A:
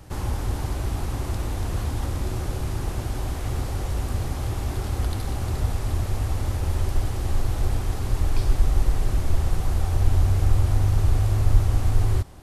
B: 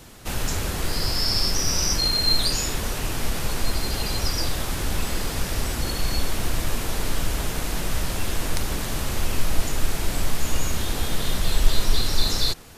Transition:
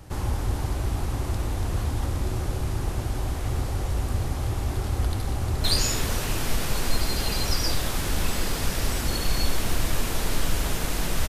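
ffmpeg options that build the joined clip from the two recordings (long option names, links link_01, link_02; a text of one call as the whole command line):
ffmpeg -i cue0.wav -i cue1.wav -filter_complex "[0:a]apad=whole_dur=11.28,atrim=end=11.28,atrim=end=5.642[link_01];[1:a]atrim=start=2.378:end=8.02[link_02];[link_01][link_02]acrossfade=duration=0.004:curve1=hsin:curve2=hsin,asplit=2[link_03][link_04];[link_04]afade=type=in:start_time=5.38:duration=0.01,afade=type=out:start_time=5.64:duration=0.01,aecho=0:1:220|440|660|880|1100|1320|1540|1760|1980|2200:0.668344|0.434424|0.282375|0.183544|0.119304|0.0775473|0.0504058|0.0327637|0.0212964|0.0138427[link_05];[link_03][link_05]amix=inputs=2:normalize=0" out.wav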